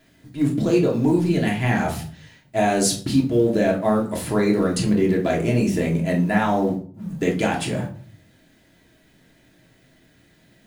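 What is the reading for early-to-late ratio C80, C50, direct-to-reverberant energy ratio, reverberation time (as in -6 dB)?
13.5 dB, 9.0 dB, -2.0 dB, 0.45 s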